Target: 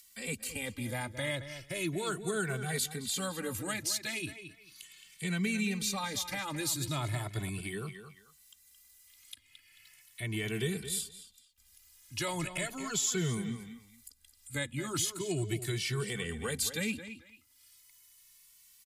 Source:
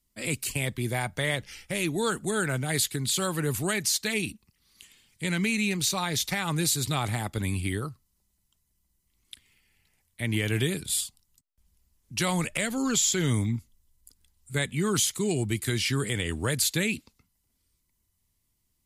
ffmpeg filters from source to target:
-filter_complex "[0:a]asplit=2[s0][s1];[s1]adelay=220,lowpass=f=3700:p=1,volume=0.282,asplit=2[s2][s3];[s3]adelay=220,lowpass=f=3700:p=1,volume=0.16[s4];[s0][s2][s4]amix=inputs=3:normalize=0,acrossover=split=550|1300[s5][s6][s7];[s7]acompressor=mode=upward:threshold=0.0224:ratio=2.5[s8];[s5][s6][s8]amix=inputs=3:normalize=0,asplit=2[s9][s10];[s10]adelay=2.2,afreqshift=0.37[s11];[s9][s11]amix=inputs=2:normalize=1,volume=0.631"

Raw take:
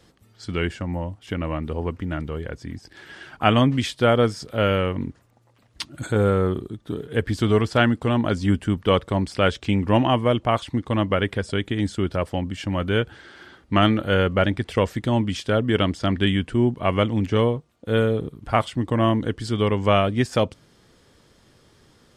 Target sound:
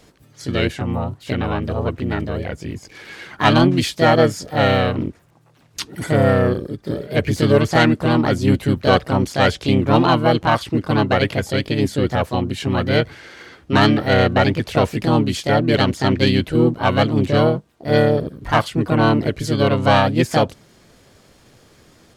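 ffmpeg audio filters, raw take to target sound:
-filter_complex "[0:a]acontrast=74,asplit=2[s0][s1];[s1]asetrate=58866,aresample=44100,atempo=0.749154,volume=0.891[s2];[s0][s2]amix=inputs=2:normalize=0,volume=0.631"

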